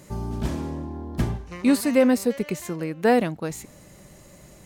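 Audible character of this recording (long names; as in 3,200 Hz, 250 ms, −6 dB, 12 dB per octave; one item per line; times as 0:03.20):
background noise floor −50 dBFS
spectral slope −6.0 dB per octave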